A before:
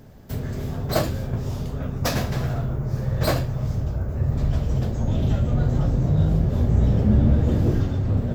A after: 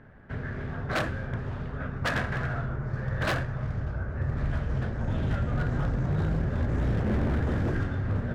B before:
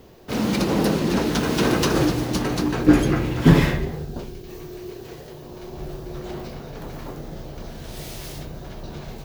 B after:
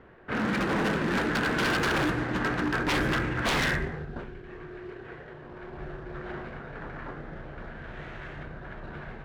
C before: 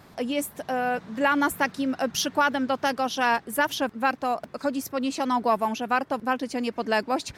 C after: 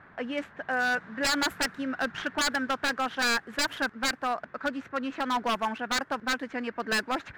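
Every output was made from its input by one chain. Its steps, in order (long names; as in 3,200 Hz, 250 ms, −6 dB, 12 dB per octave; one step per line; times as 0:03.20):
running median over 9 samples
parametric band 1,600 Hz +15 dB 1 octave
low-pass that shuts in the quiet parts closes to 2,900 Hz, open at −11.5 dBFS
wave folding −14 dBFS
level −6.5 dB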